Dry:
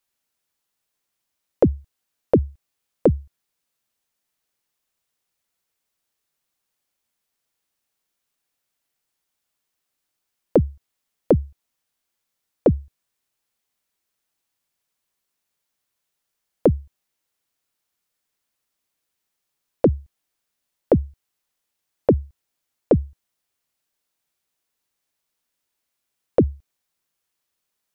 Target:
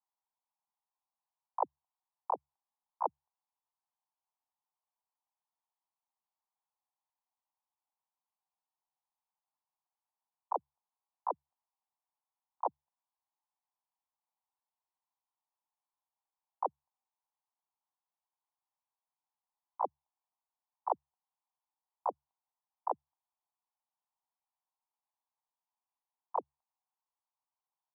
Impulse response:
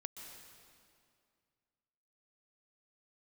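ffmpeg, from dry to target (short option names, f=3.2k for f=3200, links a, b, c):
-filter_complex "[0:a]asplit=2[a][b];[b]asetrate=88200,aresample=44100,atempo=0.5,volume=-14dB[c];[a][c]amix=inputs=2:normalize=0,asuperpass=centerf=890:order=4:qfactor=2.9,volume=-1.5dB"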